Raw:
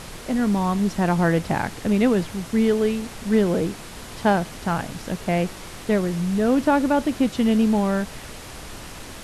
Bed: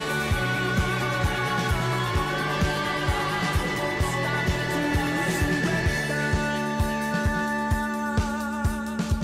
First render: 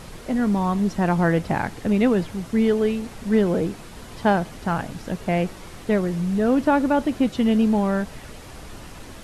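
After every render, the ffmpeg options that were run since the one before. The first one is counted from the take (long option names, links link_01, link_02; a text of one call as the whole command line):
ffmpeg -i in.wav -af "afftdn=noise_reduction=6:noise_floor=-39" out.wav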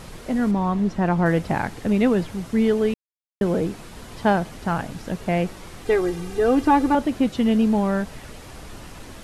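ffmpeg -i in.wav -filter_complex "[0:a]asettb=1/sr,asplit=3[link_01][link_02][link_03];[link_01]atrim=end=0.514[link_04];[link_02]atrim=start=0.51:end=1.26,asetpts=PTS-STARTPTS,afade=type=in:duration=0.004:curve=qsin,afade=type=out:start_time=0.746:duration=0.004:curve=qsin,lowpass=frequency=3000:poles=1[link_05];[link_03]atrim=start=1.256[link_06];[link_04][link_05]acrossfade=duration=0.004:curve1=hsin:curve2=qsin[link_07];[link_07][link_06]acrossfade=duration=0.004:curve1=qsin:curve2=hsin,asettb=1/sr,asplit=3[link_08][link_09][link_10];[link_08]atrim=end=5.854[link_11];[link_09]atrim=start=5.85:end=6.95,asetpts=PTS-STARTPTS,afade=type=in:duration=0.004:curve=qsin,afade=type=out:start_time=1.096:duration=0.004:curve=qsin,aecho=1:1:2.5:0.92,atrim=end_sample=48510[link_12];[link_10]atrim=start=6.946[link_13];[link_11][link_12]acrossfade=duration=0.004:curve1=hsin:curve2=qsin[link_14];[link_14][link_13]acrossfade=duration=0.004:curve1=qsin:curve2=hsin,asplit=3[link_15][link_16][link_17];[link_15]atrim=end=2.94,asetpts=PTS-STARTPTS,afade=type=out:start_time=2.936:duration=0.004:curve=hsin[link_18];[link_16]atrim=start=2.94:end=3.41,asetpts=PTS-STARTPTS,volume=0[link_19];[link_17]atrim=start=3.41,asetpts=PTS-STARTPTS,afade=type=in:duration=0.004:curve=hsin[link_20];[link_18][link_19][link_20]concat=n=3:v=0:a=1" out.wav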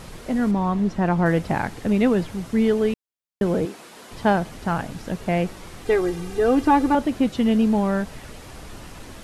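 ffmpeg -i in.wav -filter_complex "[0:a]asettb=1/sr,asplit=3[link_01][link_02][link_03];[link_01]atrim=end=3.654[link_04];[link_02]atrim=start=3.65:end=4.11,asetpts=PTS-STARTPTS,afade=type=in:duration=0.004:curve=qsin,afade=type=out:start_time=0.456:duration=0.004:curve=qsin,highpass=320[link_05];[link_03]atrim=start=4.106[link_06];[link_04][link_05]acrossfade=duration=0.004:curve1=hsin:curve2=qsin[link_07];[link_07][link_06]acrossfade=duration=0.004:curve1=qsin:curve2=hsin" out.wav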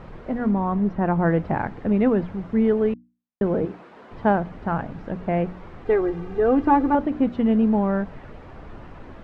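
ffmpeg -i in.wav -af "lowpass=1600,bandreject=frequency=60:width_type=h:width=6,bandreject=frequency=120:width_type=h:width=6,bandreject=frequency=180:width_type=h:width=6,bandreject=frequency=240:width_type=h:width=6,bandreject=frequency=300:width_type=h:width=6" out.wav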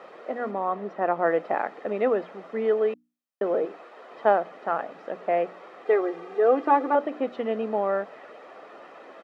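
ffmpeg -i in.wav -af "highpass=frequency=330:width=0.5412,highpass=frequency=330:width=1.3066,aecho=1:1:1.6:0.38" out.wav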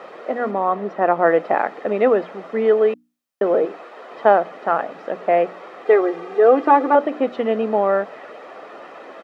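ffmpeg -i in.wav -af "volume=7.5dB,alimiter=limit=-3dB:level=0:latency=1" out.wav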